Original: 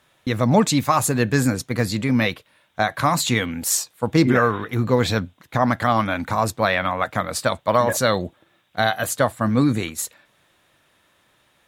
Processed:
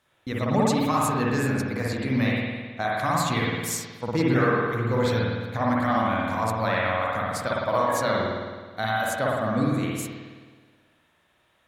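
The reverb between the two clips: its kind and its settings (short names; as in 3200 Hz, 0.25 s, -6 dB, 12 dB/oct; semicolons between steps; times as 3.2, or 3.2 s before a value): spring tank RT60 1.5 s, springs 53 ms, chirp 75 ms, DRR -4.5 dB; gain -9.5 dB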